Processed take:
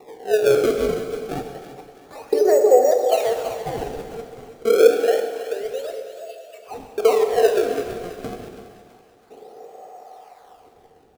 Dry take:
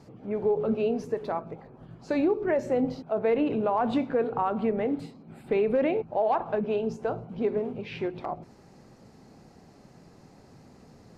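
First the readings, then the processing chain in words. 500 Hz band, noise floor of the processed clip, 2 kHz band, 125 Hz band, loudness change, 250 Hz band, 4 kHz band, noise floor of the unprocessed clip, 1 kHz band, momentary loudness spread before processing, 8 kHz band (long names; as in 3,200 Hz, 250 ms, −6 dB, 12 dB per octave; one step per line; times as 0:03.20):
+9.0 dB, −53 dBFS, +7.0 dB, 0.0 dB, +8.5 dB, −3.0 dB, +13.0 dB, −54 dBFS, +4.0 dB, 9 LU, can't be measured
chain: delay that plays each chunk backwards 226 ms, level −4 dB
low-pass filter 4,800 Hz 12 dB per octave
time-frequency box erased 0:04.45–0:06.65, 690–2,600 Hz
comb filter 1.6 ms, depth 41%
in parallel at −3 dB: speech leveller 2 s
on the sum: auto-filter high-pass saw up 0.43 Hz 330–3,600 Hz
sample-and-hold swept by an LFO 28×, swing 160% 0.28 Hz
hollow resonant body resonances 450/740 Hz, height 13 dB, ringing for 35 ms
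on a send: feedback echo with a high-pass in the loop 329 ms, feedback 47%, high-pass 420 Hz, level −12 dB
on the sum: dense smooth reverb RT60 2 s, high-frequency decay 0.85×, DRR 5 dB
level −7.5 dB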